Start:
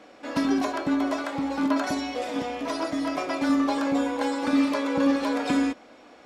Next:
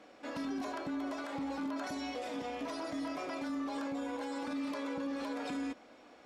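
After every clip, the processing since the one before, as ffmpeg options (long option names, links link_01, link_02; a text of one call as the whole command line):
ffmpeg -i in.wav -af "alimiter=limit=-24dB:level=0:latency=1:release=46,volume=-7dB" out.wav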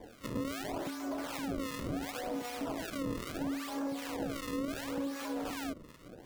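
ffmpeg -i in.wav -filter_complex "[0:a]acrusher=samples=32:mix=1:aa=0.000001:lfo=1:lforange=51.2:lforate=0.72,acompressor=threshold=-41dB:ratio=3,acrossover=split=990[link_01][link_02];[link_01]aeval=exprs='val(0)*(1-0.7/2+0.7/2*cos(2*PI*2.6*n/s))':channel_layout=same[link_03];[link_02]aeval=exprs='val(0)*(1-0.7/2-0.7/2*cos(2*PI*2.6*n/s))':channel_layout=same[link_04];[link_03][link_04]amix=inputs=2:normalize=0,volume=8.5dB" out.wav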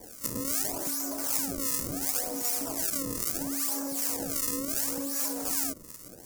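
ffmpeg -i in.wav -af "aexciter=amount=11:drive=3:freq=5100" out.wav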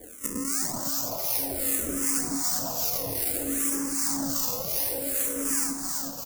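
ffmpeg -i in.wav -filter_complex "[0:a]asplit=2[link_01][link_02];[link_02]aecho=0:1:380|722|1030|1307|1556:0.631|0.398|0.251|0.158|0.1[link_03];[link_01][link_03]amix=inputs=2:normalize=0,asplit=2[link_04][link_05];[link_05]afreqshift=-0.58[link_06];[link_04][link_06]amix=inputs=2:normalize=1,volume=4dB" out.wav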